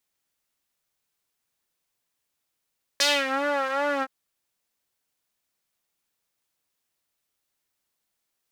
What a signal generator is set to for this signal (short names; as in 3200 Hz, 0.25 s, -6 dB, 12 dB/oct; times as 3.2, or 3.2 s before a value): synth patch with vibrato C#5, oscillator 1 triangle, interval -12 st, detune 9 cents, oscillator 2 level -3 dB, sub -5 dB, noise -15 dB, filter bandpass, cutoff 1300 Hz, Q 1.8, filter decay 0.34 s, filter sustain 0%, attack 2.7 ms, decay 0.24 s, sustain -12.5 dB, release 0.05 s, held 1.02 s, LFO 2.6 Hz, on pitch 80 cents